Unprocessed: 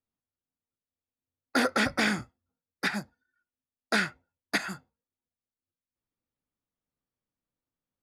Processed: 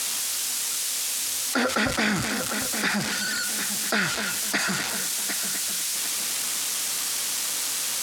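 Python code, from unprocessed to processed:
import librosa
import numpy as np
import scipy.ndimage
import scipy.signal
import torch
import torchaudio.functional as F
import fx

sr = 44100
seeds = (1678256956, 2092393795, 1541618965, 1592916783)

y = x + 0.5 * 10.0 ** (-23.5 / 20.0) * np.diff(np.sign(x), prepend=np.sign(x[:1]))
y = scipy.signal.sosfilt(scipy.signal.butter(2, 8200.0, 'lowpass', fs=sr, output='sos'), y)
y = fx.echo_heads(y, sr, ms=251, heads='first and third', feedback_pct=47, wet_db=-19)
y = fx.env_flatten(y, sr, amount_pct=70)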